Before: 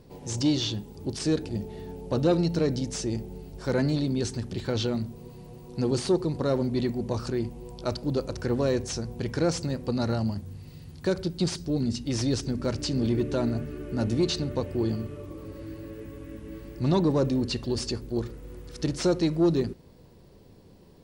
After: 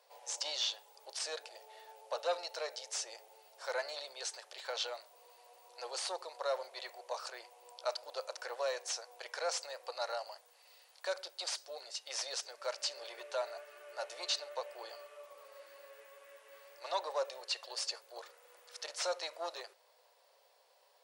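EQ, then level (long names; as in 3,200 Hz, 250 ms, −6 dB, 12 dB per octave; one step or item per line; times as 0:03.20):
Butterworth high-pass 560 Hz 48 dB per octave
−3.5 dB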